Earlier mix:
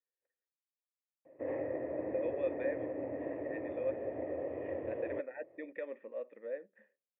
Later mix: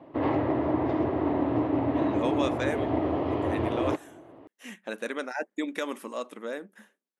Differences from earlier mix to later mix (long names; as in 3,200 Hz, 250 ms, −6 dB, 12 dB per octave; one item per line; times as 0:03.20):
background: entry −1.25 s
master: remove formant resonators in series e